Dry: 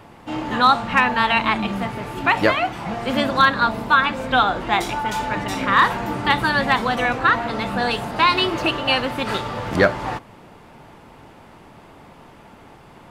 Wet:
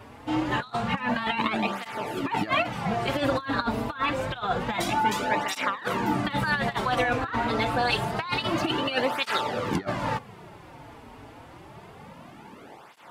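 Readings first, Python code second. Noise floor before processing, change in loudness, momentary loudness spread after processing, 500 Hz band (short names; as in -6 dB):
-46 dBFS, -7.5 dB, 21 LU, -5.5 dB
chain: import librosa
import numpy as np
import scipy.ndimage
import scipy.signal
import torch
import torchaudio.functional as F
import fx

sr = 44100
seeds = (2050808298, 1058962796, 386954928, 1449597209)

y = fx.over_compress(x, sr, threshold_db=-21.0, ratio=-0.5)
y = fx.flanger_cancel(y, sr, hz=0.27, depth_ms=6.0)
y = y * librosa.db_to_amplitude(-1.0)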